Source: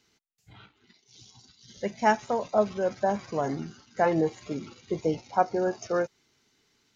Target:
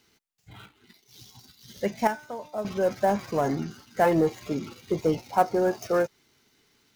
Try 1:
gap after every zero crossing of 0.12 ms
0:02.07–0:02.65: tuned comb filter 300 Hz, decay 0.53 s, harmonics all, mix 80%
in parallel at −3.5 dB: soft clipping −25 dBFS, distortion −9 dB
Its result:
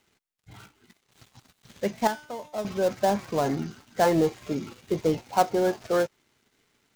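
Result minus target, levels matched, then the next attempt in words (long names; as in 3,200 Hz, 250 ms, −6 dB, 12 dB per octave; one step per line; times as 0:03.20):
gap after every zero crossing: distortion +10 dB
gap after every zero crossing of 0.05 ms
0:02.07–0:02.65: tuned comb filter 300 Hz, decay 0.53 s, harmonics all, mix 80%
in parallel at −3.5 dB: soft clipping −25 dBFS, distortion −9 dB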